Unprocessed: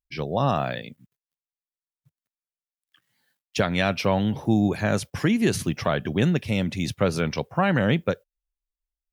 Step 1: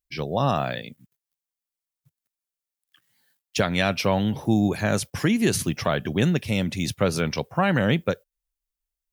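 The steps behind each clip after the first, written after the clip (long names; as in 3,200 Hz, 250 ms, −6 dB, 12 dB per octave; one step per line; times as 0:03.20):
high-shelf EQ 5,600 Hz +7.5 dB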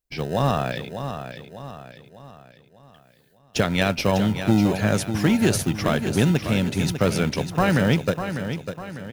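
in parallel at −9.5 dB: decimation without filtering 39×
on the sum: repeating echo 599 ms, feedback 45%, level −9 dB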